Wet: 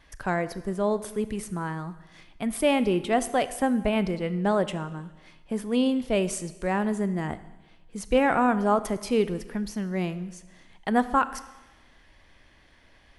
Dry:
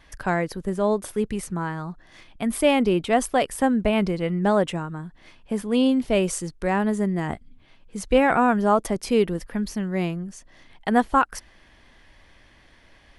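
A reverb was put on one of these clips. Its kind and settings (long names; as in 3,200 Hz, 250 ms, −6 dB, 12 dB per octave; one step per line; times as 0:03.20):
four-comb reverb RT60 1.1 s, combs from 25 ms, DRR 13.5 dB
level −3.5 dB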